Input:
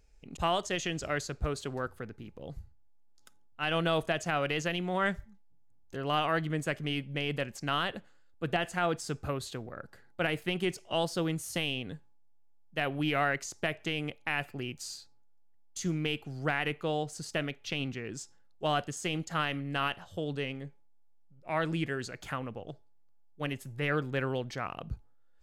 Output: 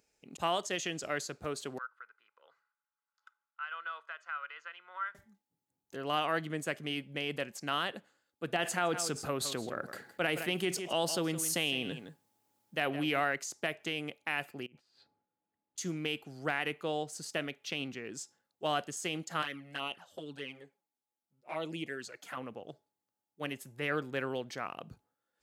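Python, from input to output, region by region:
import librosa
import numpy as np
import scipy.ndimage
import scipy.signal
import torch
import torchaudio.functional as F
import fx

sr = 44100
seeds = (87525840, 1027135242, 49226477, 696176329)

y = fx.chain(x, sr, fx.ladder_bandpass(hz=1400.0, resonance_pct=75),
    fx.comb(ms=2.0, depth=0.4),
    fx.band_squash(depth_pct=40), at=(1.78, 5.15))
y = fx.chain(y, sr, fx.echo_single(ms=163, db=-16.0),
    fx.env_flatten(amount_pct=50), at=(8.59, 13.2))
y = fx.chain(y, sr, fx.over_compress(threshold_db=-51.0, ratio=-1.0),
    fx.air_absorb(metres=410.0), at=(14.66, 15.78))
y = fx.chain(y, sr, fx.env_flanger(rest_ms=9.9, full_db=-27.5),
    fx.low_shelf(hz=160.0, db=-9.5), at=(19.42, 22.37))
y = scipy.signal.sosfilt(scipy.signal.butter(2, 200.0, 'highpass', fs=sr, output='sos'), y)
y = fx.high_shelf(y, sr, hz=7200.0, db=6.0)
y = y * 10.0 ** (-2.5 / 20.0)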